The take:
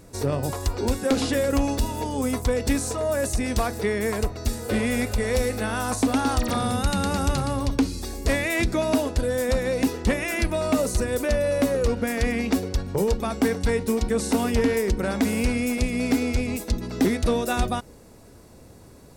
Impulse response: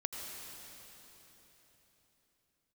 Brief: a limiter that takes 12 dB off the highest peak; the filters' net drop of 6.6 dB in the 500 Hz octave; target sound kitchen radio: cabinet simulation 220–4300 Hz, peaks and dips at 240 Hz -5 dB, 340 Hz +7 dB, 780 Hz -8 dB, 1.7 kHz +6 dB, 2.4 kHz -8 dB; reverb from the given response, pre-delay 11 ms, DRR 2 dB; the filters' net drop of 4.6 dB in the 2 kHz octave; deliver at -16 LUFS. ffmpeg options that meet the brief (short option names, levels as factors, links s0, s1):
-filter_complex "[0:a]equalizer=f=500:t=o:g=-7.5,equalizer=f=2000:t=o:g=-6.5,alimiter=level_in=1.12:limit=0.0631:level=0:latency=1,volume=0.891,asplit=2[s0][s1];[1:a]atrim=start_sample=2205,adelay=11[s2];[s1][s2]afir=irnorm=-1:irlink=0,volume=0.708[s3];[s0][s3]amix=inputs=2:normalize=0,highpass=220,equalizer=f=240:t=q:w=4:g=-5,equalizer=f=340:t=q:w=4:g=7,equalizer=f=780:t=q:w=4:g=-8,equalizer=f=1700:t=q:w=4:g=6,equalizer=f=2400:t=q:w=4:g=-8,lowpass=f=4300:w=0.5412,lowpass=f=4300:w=1.3066,volume=8.41"